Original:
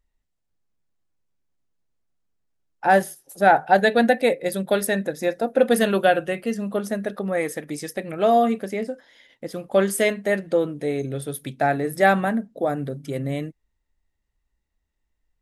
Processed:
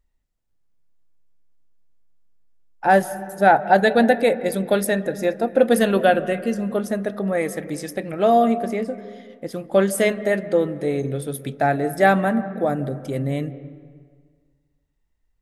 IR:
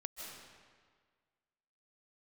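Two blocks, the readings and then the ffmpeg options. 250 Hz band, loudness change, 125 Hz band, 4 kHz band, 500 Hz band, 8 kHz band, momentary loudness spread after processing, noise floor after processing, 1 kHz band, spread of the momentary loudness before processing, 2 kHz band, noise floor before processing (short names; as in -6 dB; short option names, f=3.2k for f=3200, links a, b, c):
+2.5 dB, +1.5 dB, +3.0 dB, -0.5 dB, +2.0 dB, 0.0 dB, 13 LU, -70 dBFS, +1.5 dB, 13 LU, +0.5 dB, -76 dBFS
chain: -filter_complex "[0:a]asplit=2[a][b];[1:a]atrim=start_sample=2205,lowpass=2.1k,lowshelf=f=320:g=9[c];[b][c]afir=irnorm=-1:irlink=0,volume=-9.5dB[d];[a][d]amix=inputs=2:normalize=0"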